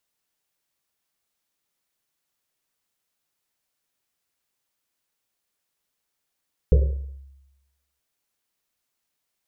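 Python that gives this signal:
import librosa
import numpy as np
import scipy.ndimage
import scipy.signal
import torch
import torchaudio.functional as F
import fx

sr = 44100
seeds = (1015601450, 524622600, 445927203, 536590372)

y = fx.risset_drum(sr, seeds[0], length_s=1.28, hz=68.0, decay_s=1.04, noise_hz=460.0, noise_width_hz=190.0, noise_pct=15)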